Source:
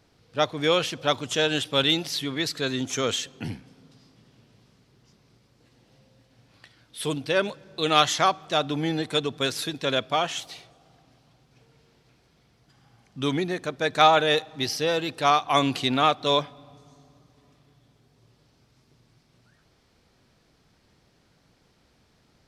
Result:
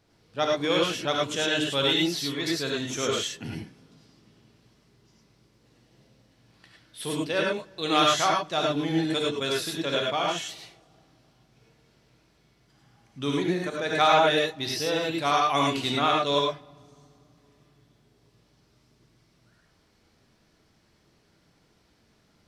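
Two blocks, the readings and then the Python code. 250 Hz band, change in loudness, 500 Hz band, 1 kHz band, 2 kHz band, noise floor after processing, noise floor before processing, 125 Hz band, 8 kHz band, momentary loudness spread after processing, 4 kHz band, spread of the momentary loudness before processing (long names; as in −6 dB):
+0.5 dB, −1.0 dB, −1.0 dB, −1.5 dB, −1.0 dB, −65 dBFS, −64 dBFS, −2.0 dB, −0.5 dB, 11 LU, −1.5 dB, 10 LU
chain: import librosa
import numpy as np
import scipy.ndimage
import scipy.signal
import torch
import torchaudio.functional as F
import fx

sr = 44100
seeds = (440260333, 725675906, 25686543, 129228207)

y = fx.rev_gated(x, sr, seeds[0], gate_ms=130, shape='rising', drr_db=-2.0)
y = y * 10.0 ** (-5.0 / 20.0)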